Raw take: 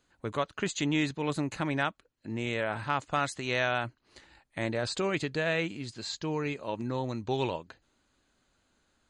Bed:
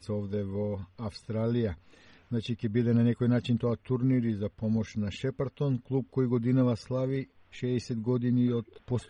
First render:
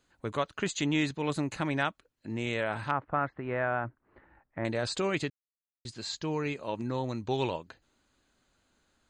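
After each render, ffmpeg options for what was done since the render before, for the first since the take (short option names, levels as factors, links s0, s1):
-filter_complex "[0:a]asettb=1/sr,asplit=3[s0][s1][s2];[s0]atrim=end=2.914[s3];[s1]atrim=start=2.91:end=4.65,asetpts=PTS-STARTPTS,afade=t=in:d=0.004:c=qsin,afade=t=out:st=1.736:d=0.004:c=qsin,lowpass=f=1700:w=0.5412,lowpass=f=1700:w=1.3066[s4];[s2]atrim=start=4.646[s5];[s3][s4]acrossfade=d=0.004:c1=hsin:c2=qsin[s6];[s6][s5]acrossfade=d=0.004:c1=qsin:c2=hsin,asplit=3[s7][s8][s9];[s7]atrim=end=5.3,asetpts=PTS-STARTPTS,afade=t=out:st=5.296:d=0.004:c=hsin[s10];[s8]atrim=start=5.3:end=5.85,asetpts=PTS-STARTPTS,volume=0[s11];[s9]atrim=start=5.85,asetpts=PTS-STARTPTS,afade=t=in:d=0.004:c=hsin[s12];[s10][s11][s12]concat=n=3:v=0:a=1"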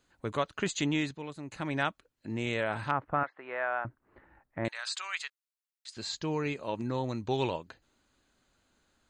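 -filter_complex "[0:a]asettb=1/sr,asplit=3[s0][s1][s2];[s0]atrim=end=3.234[s3];[s1]atrim=start=3.23:end=3.85,asetpts=PTS-STARTPTS,afade=t=in:d=0.004:c=qsin,afade=t=out:st=0.616:d=0.004:c=qsin,highpass=620,lowpass=6200[s4];[s2]atrim=start=3.846[s5];[s3][s4]acrossfade=d=0.004:c1=hsin:c2=qsin[s6];[s6][s5]acrossfade=d=0.004:c1=qsin:c2=hsin,asettb=1/sr,asplit=3[s7][s8][s9];[s7]atrim=end=4.684[s10];[s8]atrim=start=4.68:end=5.97,asetpts=PTS-STARTPTS,afade=t=in:d=0.004:c=qsin,afade=t=out:st=1.286:d=0.004:c=qsin,highpass=f=1100:w=0.5412,highpass=f=1100:w=1.3066[s11];[s9]atrim=start=5.966[s12];[s10][s11]acrossfade=d=0.004:c1=hsin:c2=qsin[s13];[s13][s12]acrossfade=d=0.004:c1=qsin:c2=hsin,asplit=3[s14][s15][s16];[s14]atrim=end=1.34,asetpts=PTS-STARTPTS,afade=t=out:st=0.84:d=0.5:silence=0.199526[s17];[s15]atrim=start=1.34:end=1.37,asetpts=PTS-STARTPTS,volume=0.2[s18];[s16]atrim=start=1.37,asetpts=PTS-STARTPTS,afade=t=in:d=0.5:silence=0.199526[s19];[s17][s18][s19]concat=n=3:v=0:a=1"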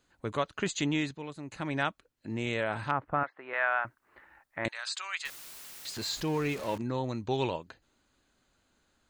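-filter_complex "[0:a]asettb=1/sr,asplit=3[s0][s1][s2];[s0]atrim=end=3.534[s3];[s1]atrim=start=3.53:end=4.66,asetpts=PTS-STARTPTS,afade=t=in:d=0.004:c=qsin,afade=t=out:st=1.126:d=0.004:c=qsin,tiltshelf=f=680:g=-9[s4];[s2]atrim=start=4.656[s5];[s3][s4]acrossfade=d=0.004:c1=hsin:c2=qsin[s6];[s6][s5]acrossfade=d=0.004:c1=qsin:c2=hsin,asettb=1/sr,asplit=3[s7][s8][s9];[s7]atrim=end=5.254[s10];[s8]atrim=start=5.25:end=6.78,asetpts=PTS-STARTPTS,afade=t=in:d=0.004:c=qsin,afade=t=out:st=1.526:d=0.004:c=qsin,aeval=exprs='val(0)+0.5*0.0133*sgn(val(0))':c=same[s11];[s9]atrim=start=6.776[s12];[s10][s11]acrossfade=d=0.004:c1=hsin:c2=qsin[s13];[s13][s12]acrossfade=d=0.004:c1=qsin:c2=hsin"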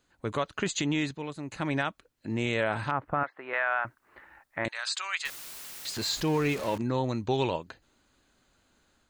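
-af "dynaudnorm=f=170:g=3:m=1.58,alimiter=limit=0.141:level=0:latency=1:release=113"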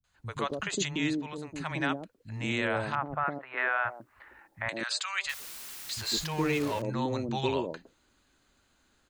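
-filter_complex "[0:a]acrossover=split=160|580[s0][s1][s2];[s2]adelay=40[s3];[s1]adelay=150[s4];[s0][s4][s3]amix=inputs=3:normalize=0"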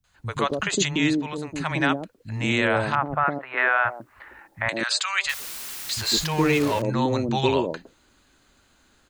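-af "volume=2.51"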